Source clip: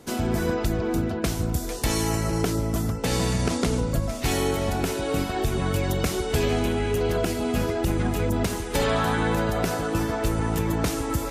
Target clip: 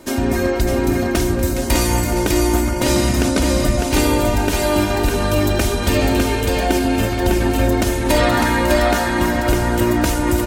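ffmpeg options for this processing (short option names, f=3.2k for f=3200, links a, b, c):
-af "aecho=1:1:3.5:0.61,aecho=1:1:258|651:0.15|0.668,asetrate=47628,aresample=44100,volume=5.5dB"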